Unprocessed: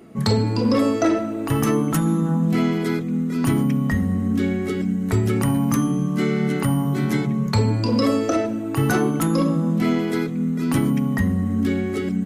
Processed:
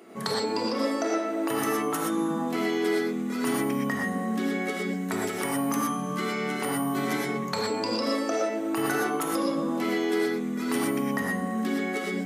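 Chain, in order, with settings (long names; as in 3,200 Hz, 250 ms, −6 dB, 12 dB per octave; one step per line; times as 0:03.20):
high-pass filter 410 Hz 12 dB per octave
downward compressor, threshold −28 dBFS, peak gain reduction 11 dB
reverb whose tail is shaped and stops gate 140 ms rising, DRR −1.5 dB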